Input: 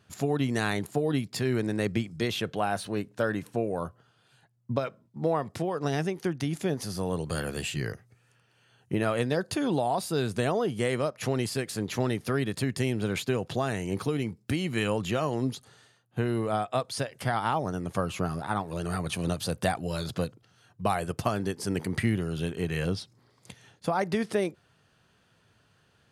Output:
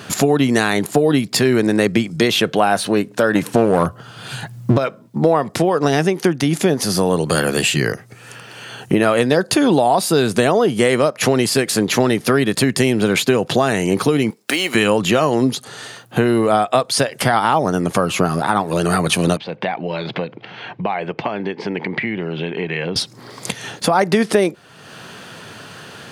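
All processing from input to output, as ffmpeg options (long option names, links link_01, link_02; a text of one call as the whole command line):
ffmpeg -i in.wav -filter_complex "[0:a]asettb=1/sr,asplit=3[link_01][link_02][link_03];[link_01]atrim=end=3.354[link_04];[link_02]atrim=start=3.35:end=4.78,asetpts=PTS-STARTPTS,afade=type=in:duration=0.004:curve=qsin,afade=type=out:start_time=1.426:duration=0.004:curve=qsin,asubboost=boost=8.5:cutoff=190,acontrast=39,aeval=exprs='clip(val(0),-1,0.0668)':channel_layout=same[link_05];[link_03]atrim=start=4.776[link_06];[link_04][link_05]acrossfade=duration=0.004:curve1=hsin:curve2=qsin[link_07];[link_07][link_06]acrossfade=duration=0.004:curve1=qsin:curve2=hsin,asettb=1/sr,asplit=3[link_08][link_09][link_10];[link_08]atrim=end=14.304[link_11];[link_09]atrim=start=14.3:end=14.75,asetpts=PTS-STARTPTS,afade=type=in:duration=0.004:curve=qsin,afade=type=out:start_time=0.446:duration=0.004:curve=qsin,highpass=540,acrusher=bits=5:mode=log:mix=0:aa=0.000001[link_12];[link_10]atrim=start=14.746[link_13];[link_11][link_12]acrossfade=duration=0.004:curve1=hsin:curve2=qsin[link_14];[link_14][link_13]acrossfade=duration=0.004:curve1=qsin:curve2=hsin,asettb=1/sr,asplit=3[link_15][link_16][link_17];[link_15]atrim=end=19.374[link_18];[link_16]atrim=start=19.37:end=22.96,asetpts=PTS-STARTPTS,afade=type=in:duration=0.004:curve=qsin,afade=type=out:start_time=3.586:duration=0.004:curve=qsin,acompressor=threshold=-50dB:ratio=2:attack=3.2:release=140:knee=1:detection=peak,highpass=150,equalizer=frequency=260:width_type=q:width=4:gain=-3,equalizer=frequency=880:width_type=q:width=4:gain=5,equalizer=frequency=1300:width_type=q:width=4:gain=-6,equalizer=frequency=2200:width_type=q:width=4:gain=8,lowpass=frequency=3400:width=0.5412,lowpass=frequency=3400:width=1.3066[link_19];[link_17]atrim=start=22.956[link_20];[link_18][link_19]acrossfade=duration=0.004:curve1=hsin:curve2=qsin[link_21];[link_21][link_20]acrossfade=duration=0.004:curve1=qsin:curve2=hsin,highpass=170,acompressor=threshold=-56dB:ratio=2,alimiter=level_in=31dB:limit=-1dB:release=50:level=0:latency=1,volume=-1dB" out.wav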